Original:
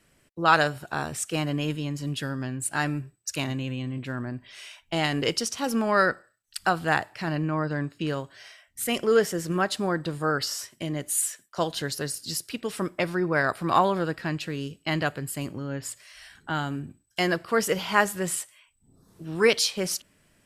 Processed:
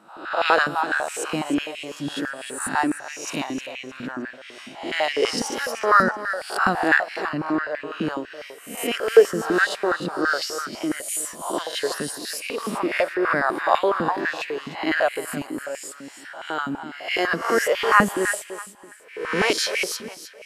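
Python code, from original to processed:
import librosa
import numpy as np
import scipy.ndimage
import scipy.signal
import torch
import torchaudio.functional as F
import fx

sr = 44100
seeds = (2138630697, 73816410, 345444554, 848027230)

p1 = fx.spec_swells(x, sr, rise_s=0.67)
p2 = fx.peak_eq(p1, sr, hz=12000.0, db=-3.0, octaves=2.5)
p3 = p2 + fx.echo_feedback(p2, sr, ms=308, feedback_pct=30, wet_db=-11, dry=0)
p4 = fx.filter_held_highpass(p3, sr, hz=12.0, low_hz=220.0, high_hz=2300.0)
y = F.gain(torch.from_numpy(p4), -1.5).numpy()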